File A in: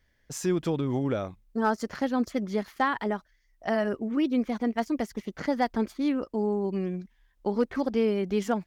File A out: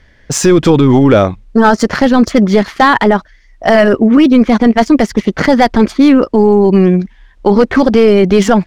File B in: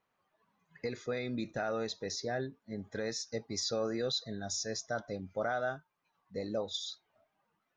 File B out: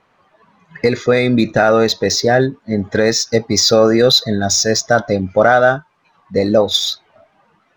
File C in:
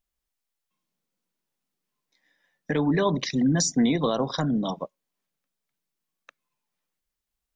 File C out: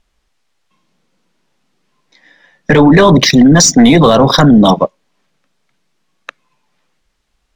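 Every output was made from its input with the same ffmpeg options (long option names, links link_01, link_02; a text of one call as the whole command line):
ffmpeg -i in.wav -af "apsyclip=24.5dB,adynamicsmooth=sensitivity=1:basefreq=6000,volume=-1.5dB" out.wav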